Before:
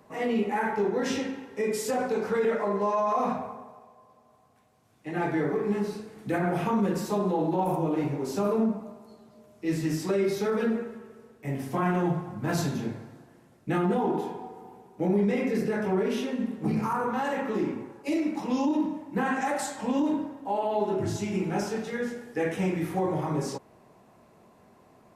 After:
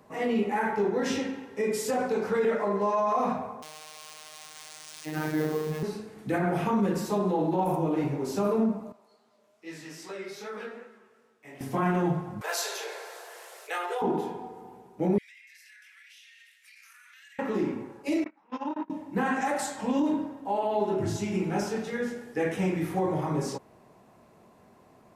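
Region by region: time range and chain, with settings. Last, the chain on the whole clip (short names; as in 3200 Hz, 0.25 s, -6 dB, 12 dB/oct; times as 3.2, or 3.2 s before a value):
3.62–5.83 switching spikes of -25.5 dBFS + robotiser 154 Hz + careless resampling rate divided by 3×, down filtered, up hold
8.92–11.61 HPF 1200 Hz 6 dB/oct + high shelf 10000 Hz -11 dB + chorus 2.5 Hz, delay 17.5 ms, depth 7.3 ms
12.41–14.02 steep high-pass 410 Hz 72 dB/oct + tilt shelf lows -5 dB, about 1500 Hz + fast leveller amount 50%
15.18–17.39 steep high-pass 1800 Hz 48 dB/oct + compressor 10:1, threshold -50 dBFS
18.24–18.9 gate -26 dBFS, range -28 dB + synth low-pass 1500 Hz, resonance Q 2 + tilt +4.5 dB/oct
whole clip: dry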